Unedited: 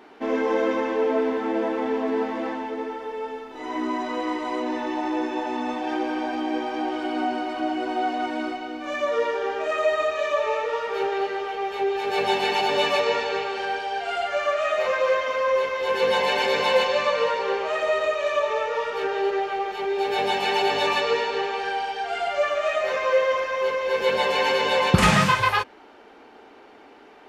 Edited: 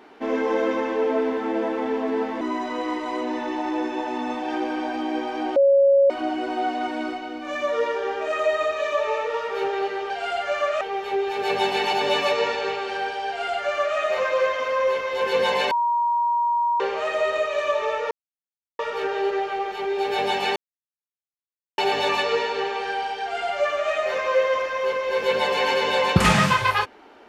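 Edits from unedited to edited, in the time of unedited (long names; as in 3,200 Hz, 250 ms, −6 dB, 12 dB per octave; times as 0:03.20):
0:02.41–0:03.80: remove
0:06.95–0:07.49: beep over 554 Hz −12.5 dBFS
0:13.95–0:14.66: duplicate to 0:11.49
0:16.39–0:17.48: beep over 949 Hz −18.5 dBFS
0:18.79: splice in silence 0.68 s
0:20.56: splice in silence 1.22 s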